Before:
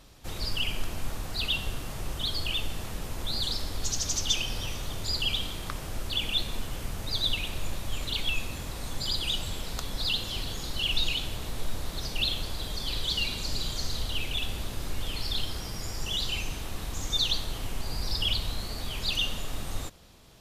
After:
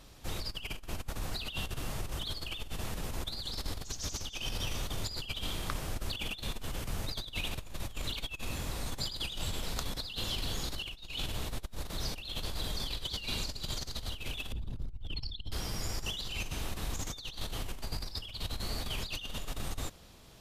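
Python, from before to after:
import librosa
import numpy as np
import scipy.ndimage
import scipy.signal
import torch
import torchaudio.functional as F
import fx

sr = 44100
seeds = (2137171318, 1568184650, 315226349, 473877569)

y = fx.envelope_sharpen(x, sr, power=2.0, at=(14.52, 15.52))
y = fx.over_compress(y, sr, threshold_db=-32.0, ratio=-0.5)
y = F.gain(torch.from_numpy(y), -3.5).numpy()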